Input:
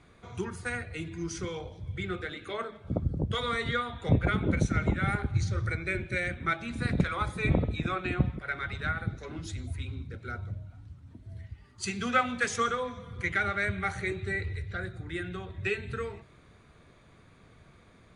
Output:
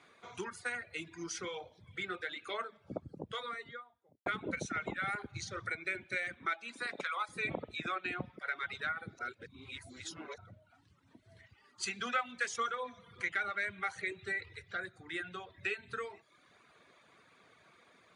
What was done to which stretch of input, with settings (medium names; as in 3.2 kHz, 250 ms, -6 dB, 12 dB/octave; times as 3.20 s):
2.75–4.26 s: studio fade out
6.45–7.28 s: high-pass 240 Hz -> 610 Hz
9.19–10.38 s: reverse
whole clip: reverb removal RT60 0.75 s; frequency weighting A; compression 2:1, threshold -36 dBFS